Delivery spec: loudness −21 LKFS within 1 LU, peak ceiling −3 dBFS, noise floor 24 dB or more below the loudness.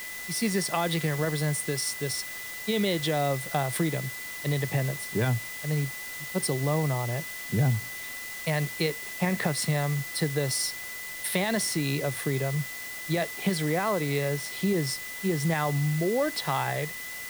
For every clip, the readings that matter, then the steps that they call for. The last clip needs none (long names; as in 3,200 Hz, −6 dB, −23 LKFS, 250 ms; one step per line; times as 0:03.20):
interfering tone 2,000 Hz; level of the tone −38 dBFS; background noise floor −38 dBFS; target noise floor −53 dBFS; integrated loudness −28.5 LKFS; sample peak −12.0 dBFS; target loudness −21.0 LKFS
→ notch filter 2,000 Hz, Q 30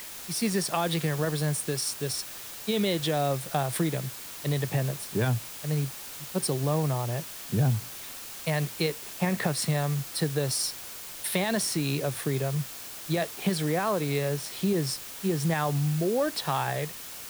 interfering tone none found; background noise floor −41 dBFS; target noise floor −53 dBFS
→ broadband denoise 12 dB, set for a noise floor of −41 dBFS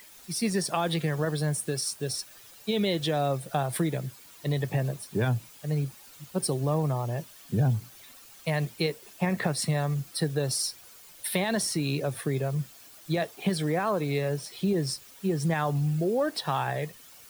background noise floor −51 dBFS; target noise floor −53 dBFS
→ broadband denoise 6 dB, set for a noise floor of −51 dBFS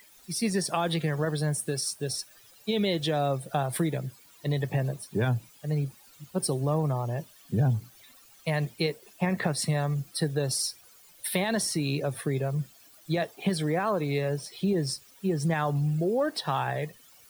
background noise floor −56 dBFS; integrated loudness −29.5 LKFS; sample peak −12.5 dBFS; target loudness −21.0 LKFS
→ level +8.5 dB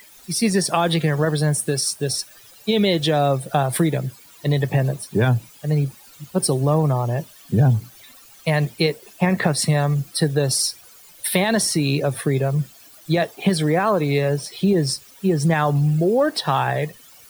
integrated loudness −21.0 LKFS; sample peak −4.0 dBFS; background noise floor −47 dBFS